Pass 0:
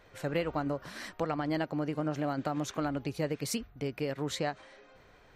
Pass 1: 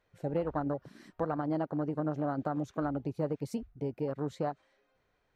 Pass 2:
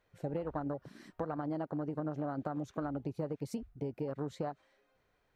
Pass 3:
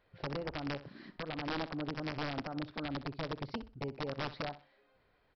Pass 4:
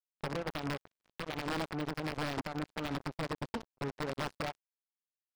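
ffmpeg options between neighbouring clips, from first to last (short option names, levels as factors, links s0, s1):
-af "afwtdn=0.0158"
-af "acompressor=threshold=0.0224:ratio=6"
-af "alimiter=level_in=2.51:limit=0.0631:level=0:latency=1:release=371,volume=0.398,aresample=11025,aeval=exprs='(mod(50.1*val(0)+1,2)-1)/50.1':c=same,aresample=44100,aecho=1:1:63|126|189:0.188|0.0509|0.0137,volume=1.5"
-af "aeval=exprs='0.0501*(cos(1*acos(clip(val(0)/0.0501,-1,1)))-cos(1*PI/2))+0.00178*(cos(5*acos(clip(val(0)/0.0501,-1,1)))-cos(5*PI/2))':c=same,aecho=1:1:660|1320:0.112|0.0314,acrusher=bits=5:mix=0:aa=0.5"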